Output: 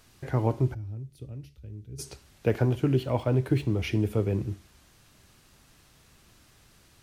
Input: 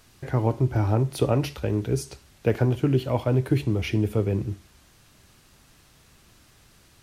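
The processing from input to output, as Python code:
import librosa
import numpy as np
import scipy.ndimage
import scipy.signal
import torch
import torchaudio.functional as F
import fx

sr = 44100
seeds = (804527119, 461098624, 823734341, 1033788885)

y = fx.tone_stack(x, sr, knobs='10-0-1', at=(0.73, 1.98), fade=0.02)
y = fx.resample_linear(y, sr, factor=2, at=(3.03, 3.81))
y = y * 10.0 ** (-2.5 / 20.0)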